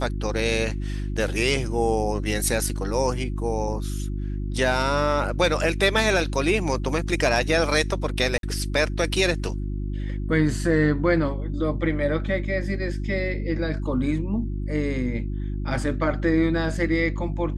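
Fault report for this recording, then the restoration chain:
hum 50 Hz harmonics 7 -28 dBFS
8.38–8.43 s: dropout 52 ms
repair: de-hum 50 Hz, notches 7; interpolate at 8.38 s, 52 ms

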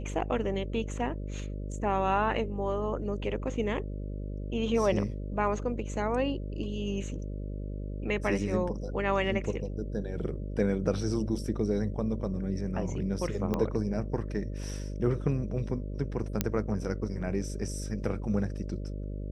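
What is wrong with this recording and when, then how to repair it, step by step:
buzz 50 Hz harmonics 12 -36 dBFS
13.54 s: pop -17 dBFS
16.41 s: pop -10 dBFS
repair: de-click; de-hum 50 Hz, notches 12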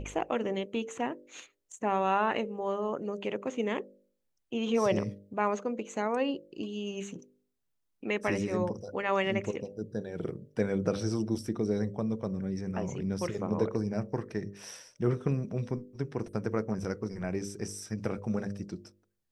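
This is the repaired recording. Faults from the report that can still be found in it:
13.54 s: pop

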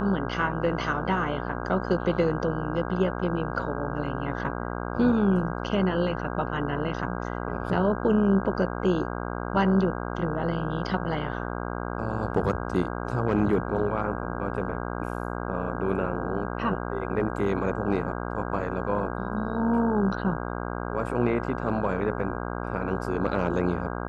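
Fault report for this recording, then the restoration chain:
buzz 60 Hz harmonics 27 -32 dBFS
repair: de-hum 60 Hz, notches 27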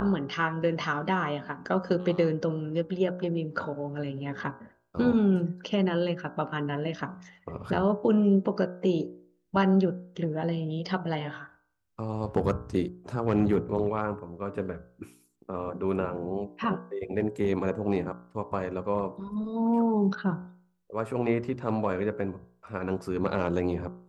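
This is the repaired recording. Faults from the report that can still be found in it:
nothing left

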